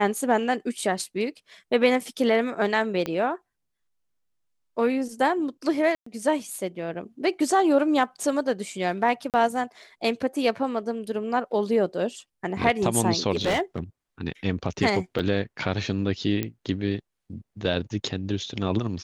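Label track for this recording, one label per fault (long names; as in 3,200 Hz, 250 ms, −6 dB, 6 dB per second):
3.060000	3.060000	click −15 dBFS
5.950000	6.060000	drop-out 114 ms
9.300000	9.340000	drop-out 38 ms
13.330000	13.790000	clipping −19.5 dBFS
15.190000	15.200000	drop-out 6 ms
16.430000	16.430000	click −13 dBFS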